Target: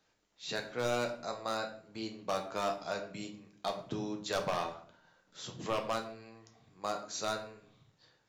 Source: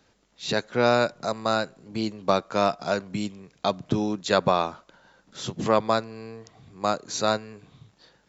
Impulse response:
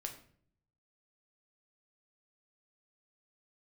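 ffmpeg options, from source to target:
-filter_complex "[0:a]lowshelf=f=360:g=-7.5,aeval=exprs='0.2*(abs(mod(val(0)/0.2+3,4)-2)-1)':c=same[a];[1:a]atrim=start_sample=2205[b];[a][b]afir=irnorm=-1:irlink=0,volume=-6.5dB"

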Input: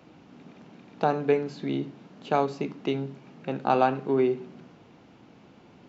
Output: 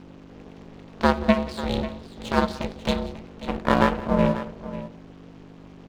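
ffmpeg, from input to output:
-filter_complex "[0:a]asettb=1/sr,asplit=3[a][b][c];[a]atrim=end=1.024[d];[b]atrim=start=1.02:end=3.06,asetpts=PTS-STARTPTS,afade=t=in:d=0.004:c=qsin,afade=t=out:st=2.036:d=0.004:c=qsin,equalizer=f=3.8k:w=2.4:g=9.5[e];[c]atrim=start=3.056[f];[d][e]acrossfade=d=0.004:c1=hsin:c2=qsin[g];[g][f]acrossfade=d=0.004:c1=qsin:c2=hsin,aeval=exprs='max(val(0),0)':c=same,aeval=exprs='val(0)+0.00282*(sin(2*PI*50*n/s)+sin(2*PI*2*50*n/s)/2+sin(2*PI*3*50*n/s)/3+sin(2*PI*4*50*n/s)/4+sin(2*PI*5*50*n/s)/5)':c=same,aeval=exprs='val(0)*sin(2*PI*220*n/s)':c=same,aecho=1:1:179|542:0.106|0.2,volume=9dB"

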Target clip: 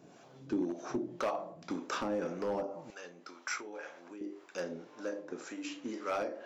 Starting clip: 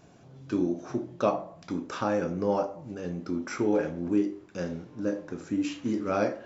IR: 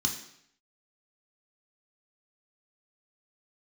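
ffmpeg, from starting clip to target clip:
-filter_complex "[0:a]acompressor=threshold=-29dB:ratio=5,asetnsamples=n=441:p=0,asendcmd='2.9 highpass f 960;4.21 highpass f 430',highpass=220,asoftclip=type=hard:threshold=-28.5dB,acrossover=split=510[a][b];[a]aeval=exprs='val(0)*(1-0.7/2+0.7/2*cos(2*PI*1.9*n/s))':c=same[c];[b]aeval=exprs='val(0)*(1-0.7/2-0.7/2*cos(2*PI*1.9*n/s))':c=same[d];[c][d]amix=inputs=2:normalize=0,volume=4dB"

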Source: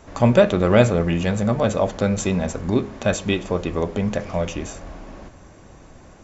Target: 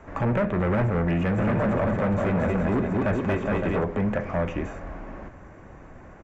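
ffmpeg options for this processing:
-filter_complex "[0:a]acrossover=split=3400[a][b];[b]acompressor=threshold=-42dB:ratio=4:attack=1:release=60[c];[a][c]amix=inputs=2:normalize=0,asplit=3[d][e][f];[d]afade=t=out:st=1.37:d=0.02[g];[e]aecho=1:1:230|414|561.2|679|773.2:0.631|0.398|0.251|0.158|0.1,afade=t=in:st=1.37:d=0.02,afade=t=out:st=3.83:d=0.02[h];[f]afade=t=in:st=3.83:d=0.02[i];[g][h][i]amix=inputs=3:normalize=0,acrossover=split=270[j][k];[k]acompressor=threshold=-20dB:ratio=4[l];[j][l]amix=inputs=2:normalize=0,asoftclip=type=hard:threshold=-20.5dB,highshelf=f=2.8k:t=q:w=1.5:g=-12.5"

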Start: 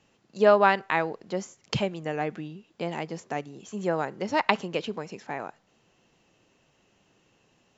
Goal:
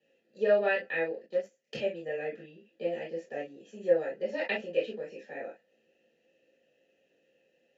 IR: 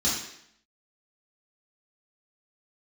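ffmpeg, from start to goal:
-filter_complex "[1:a]atrim=start_sample=2205,atrim=end_sample=3087[a];[0:a][a]afir=irnorm=-1:irlink=0,asettb=1/sr,asplit=3[b][c][d];[b]atrim=end=1.264[e];[c]atrim=start=1.26:end=1.76,asetpts=PTS-STARTPTS,afade=t=in:d=0.004:c=qsin,afade=t=out:st=0.496:d=0.004:c=qsin,aeval=exprs='0.473*(cos(1*acos(clip(val(0)/0.473,-1,1)))-cos(1*PI/2))+0.0473*(cos(7*acos(clip(val(0)/0.473,-1,1)))-cos(7*PI/2))':c=same[f];[d]atrim=start=1.756[g];[e][f]acrossfade=d=0.004:c1=hsin:c2=qsin[h];[h][g]acrossfade=d=0.004:c1=qsin:c2=hsin,asplit=3[i][j][k];[i]bandpass=f=530:t=q:w=8,volume=0dB[l];[j]bandpass=f=1.84k:t=q:w=8,volume=-6dB[m];[k]bandpass=f=2.48k:t=q:w=8,volume=-9dB[n];[l][m][n]amix=inputs=3:normalize=0,volume=-4dB"

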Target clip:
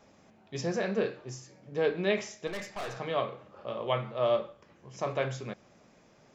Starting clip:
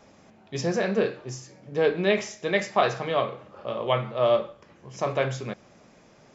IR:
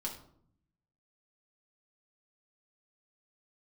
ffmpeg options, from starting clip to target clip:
-filter_complex "[0:a]asettb=1/sr,asplit=3[a][b][c];[a]atrim=end=2.474[d];[b]atrim=start=2.47:end=2.97,asetpts=PTS-STARTPTS,afade=t=in:d=0.004:c=qsin,afade=t=out:st=0.496:d=0.004:c=qsin,aeval=exprs='(tanh(28.2*val(0)+0.45)-tanh(0.45))/28.2':c=same[e];[c]atrim=start=2.966[f];[d][e]acrossfade=d=0.004:c1=hsin:c2=qsin[g];[g][f]acrossfade=d=0.004:c1=qsin:c2=hsin,volume=-5.5dB"

